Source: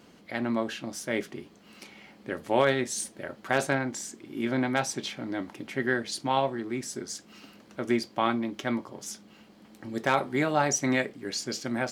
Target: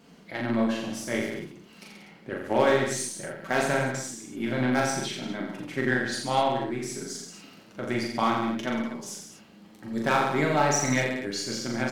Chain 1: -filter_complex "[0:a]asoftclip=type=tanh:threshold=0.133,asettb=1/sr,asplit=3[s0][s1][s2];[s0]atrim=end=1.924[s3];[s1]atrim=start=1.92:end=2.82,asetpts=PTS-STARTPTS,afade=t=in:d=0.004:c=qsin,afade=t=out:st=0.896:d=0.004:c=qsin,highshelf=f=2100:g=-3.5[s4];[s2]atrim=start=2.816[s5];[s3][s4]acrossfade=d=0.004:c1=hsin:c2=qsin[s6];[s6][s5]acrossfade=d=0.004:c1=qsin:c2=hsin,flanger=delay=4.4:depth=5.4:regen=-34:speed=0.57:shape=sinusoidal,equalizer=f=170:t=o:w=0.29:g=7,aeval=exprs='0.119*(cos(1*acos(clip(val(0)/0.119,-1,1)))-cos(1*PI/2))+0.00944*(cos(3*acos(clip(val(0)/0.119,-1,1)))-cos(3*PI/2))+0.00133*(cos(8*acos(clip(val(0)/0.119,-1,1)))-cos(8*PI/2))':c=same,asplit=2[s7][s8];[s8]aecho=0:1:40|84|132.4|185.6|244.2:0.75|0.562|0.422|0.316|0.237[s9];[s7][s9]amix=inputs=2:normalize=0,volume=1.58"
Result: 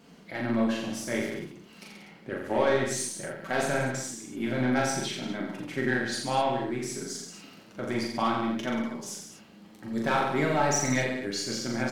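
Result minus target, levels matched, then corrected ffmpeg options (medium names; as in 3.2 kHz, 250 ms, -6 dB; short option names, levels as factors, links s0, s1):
saturation: distortion +15 dB
-filter_complex "[0:a]asoftclip=type=tanh:threshold=0.422,asettb=1/sr,asplit=3[s0][s1][s2];[s0]atrim=end=1.924[s3];[s1]atrim=start=1.92:end=2.82,asetpts=PTS-STARTPTS,afade=t=in:d=0.004:c=qsin,afade=t=out:st=0.896:d=0.004:c=qsin,highshelf=f=2100:g=-3.5[s4];[s2]atrim=start=2.816[s5];[s3][s4]acrossfade=d=0.004:c1=hsin:c2=qsin[s6];[s6][s5]acrossfade=d=0.004:c1=qsin:c2=hsin,flanger=delay=4.4:depth=5.4:regen=-34:speed=0.57:shape=sinusoidal,equalizer=f=170:t=o:w=0.29:g=7,aeval=exprs='0.119*(cos(1*acos(clip(val(0)/0.119,-1,1)))-cos(1*PI/2))+0.00944*(cos(3*acos(clip(val(0)/0.119,-1,1)))-cos(3*PI/2))+0.00133*(cos(8*acos(clip(val(0)/0.119,-1,1)))-cos(8*PI/2))':c=same,asplit=2[s7][s8];[s8]aecho=0:1:40|84|132.4|185.6|244.2:0.75|0.562|0.422|0.316|0.237[s9];[s7][s9]amix=inputs=2:normalize=0,volume=1.58"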